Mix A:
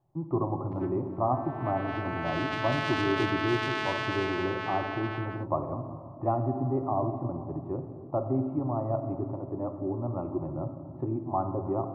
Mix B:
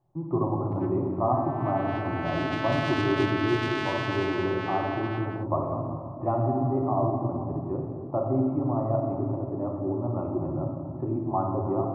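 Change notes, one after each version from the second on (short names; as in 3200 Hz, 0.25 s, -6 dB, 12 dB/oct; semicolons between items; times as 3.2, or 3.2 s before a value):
speech: send +7.0 dB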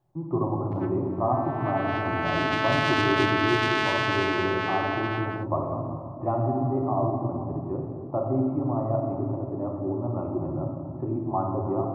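background +6.5 dB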